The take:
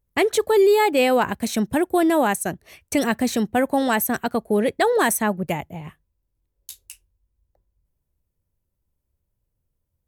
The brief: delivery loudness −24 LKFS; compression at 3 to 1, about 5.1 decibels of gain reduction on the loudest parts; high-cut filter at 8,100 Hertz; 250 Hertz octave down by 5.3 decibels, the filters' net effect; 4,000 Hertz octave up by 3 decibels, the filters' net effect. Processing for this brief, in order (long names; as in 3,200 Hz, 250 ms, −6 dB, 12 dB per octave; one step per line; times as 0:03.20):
low-pass filter 8,100 Hz
parametric band 250 Hz −7 dB
parametric band 4,000 Hz +4 dB
downward compressor 3 to 1, threshold −22 dBFS
level +2 dB